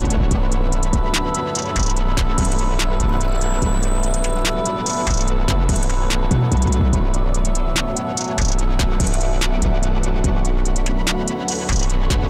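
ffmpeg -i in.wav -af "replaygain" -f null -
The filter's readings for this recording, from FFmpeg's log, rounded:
track_gain = +4.5 dB
track_peak = 0.266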